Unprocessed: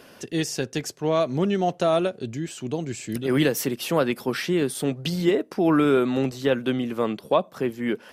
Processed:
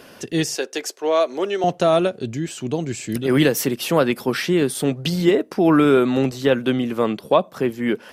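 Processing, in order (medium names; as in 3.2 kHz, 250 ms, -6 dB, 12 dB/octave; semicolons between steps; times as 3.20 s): 0.55–1.64 s: high-pass 350 Hz 24 dB/octave; trim +4.5 dB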